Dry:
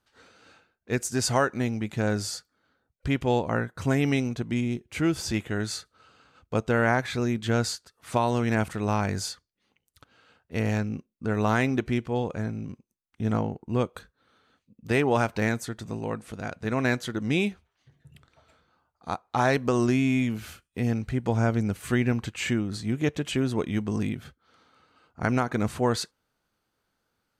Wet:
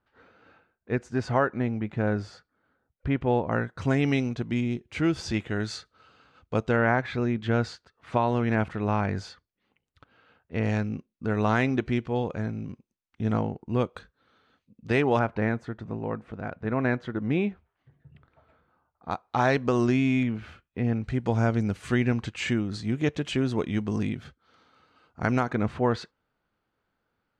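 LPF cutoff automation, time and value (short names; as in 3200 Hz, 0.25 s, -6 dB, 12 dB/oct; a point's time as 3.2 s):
2000 Hz
from 3.52 s 4900 Hz
from 6.76 s 2800 Hz
from 10.63 s 4800 Hz
from 15.19 s 1800 Hz
from 19.11 s 4900 Hz
from 20.23 s 2400 Hz
from 21.04 s 6000 Hz
from 25.53 s 2800 Hz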